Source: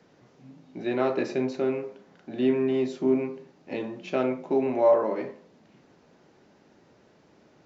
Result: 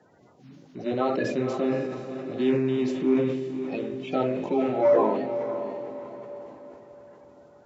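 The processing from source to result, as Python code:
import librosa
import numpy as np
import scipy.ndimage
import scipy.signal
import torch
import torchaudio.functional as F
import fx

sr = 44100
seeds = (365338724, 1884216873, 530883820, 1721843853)

y = fx.spec_quant(x, sr, step_db=30)
y = fx.echo_diffused(y, sr, ms=537, feedback_pct=44, wet_db=-8.0)
y = fx.sustainer(y, sr, db_per_s=41.0)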